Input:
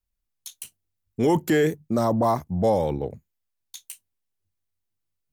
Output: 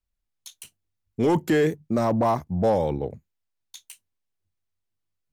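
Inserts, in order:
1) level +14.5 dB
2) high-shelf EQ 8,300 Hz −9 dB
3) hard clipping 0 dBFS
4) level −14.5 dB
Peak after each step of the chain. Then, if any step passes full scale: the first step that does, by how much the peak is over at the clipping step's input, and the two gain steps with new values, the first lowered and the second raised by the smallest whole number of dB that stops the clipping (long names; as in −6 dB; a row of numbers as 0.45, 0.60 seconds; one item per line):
+4.0, +3.5, 0.0, −14.5 dBFS
step 1, 3.5 dB
step 1 +10.5 dB, step 4 −10.5 dB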